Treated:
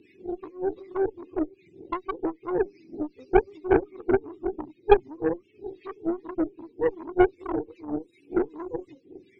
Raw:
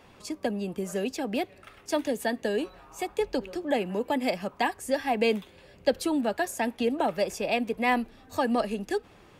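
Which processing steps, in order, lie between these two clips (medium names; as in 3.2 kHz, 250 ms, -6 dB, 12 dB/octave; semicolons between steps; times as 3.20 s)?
spectrum inverted on a logarithmic axis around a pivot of 470 Hz; elliptic band-stop 350–2400 Hz, stop band 40 dB; peaking EQ 660 Hz +9.5 dB 1.9 oct; in parallel at +2 dB: peak limiter -23 dBFS, peak gain reduction 11 dB; on the sum: compression 2:1, threshold -38 dBFS, peak gain reduction 13 dB; small resonant body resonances 360/3800 Hz, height 15 dB, ringing for 25 ms; sine folder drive 4 dB, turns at -9.5 dBFS; wah-wah 2.6 Hz 450–2100 Hz, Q 4.8; Chebyshev shaper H 2 -6 dB, 3 -19 dB, 8 -20 dB, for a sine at -12 dBFS; trim +6.5 dB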